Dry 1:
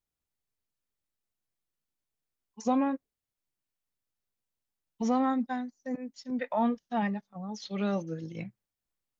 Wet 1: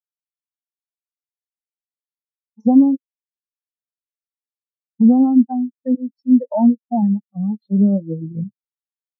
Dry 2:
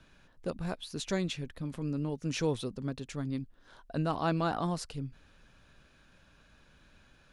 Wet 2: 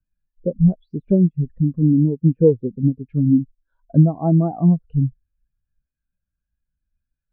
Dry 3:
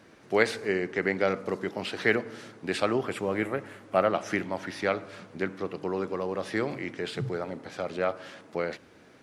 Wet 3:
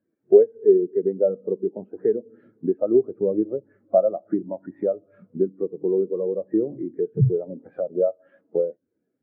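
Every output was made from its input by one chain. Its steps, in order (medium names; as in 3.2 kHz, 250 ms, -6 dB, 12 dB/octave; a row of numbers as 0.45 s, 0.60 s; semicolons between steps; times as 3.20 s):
compression 2.5:1, threshold -35 dBFS; low-pass that closes with the level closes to 930 Hz, closed at -34.5 dBFS; spectral contrast expander 2.5:1; peak normalisation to -3 dBFS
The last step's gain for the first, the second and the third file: +20.5 dB, +21.5 dB, +17.5 dB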